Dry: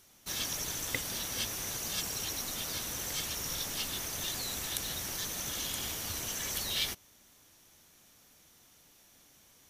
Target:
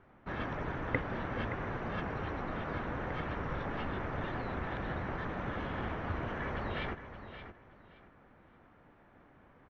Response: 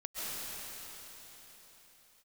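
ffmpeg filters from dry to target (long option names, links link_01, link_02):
-filter_complex "[0:a]lowpass=frequency=1700:width=0.5412,lowpass=frequency=1700:width=1.3066,asplit=2[link_01][link_02];[link_02]aecho=0:1:572|1144|1716:0.282|0.0648|0.0149[link_03];[link_01][link_03]amix=inputs=2:normalize=0,volume=7.5dB"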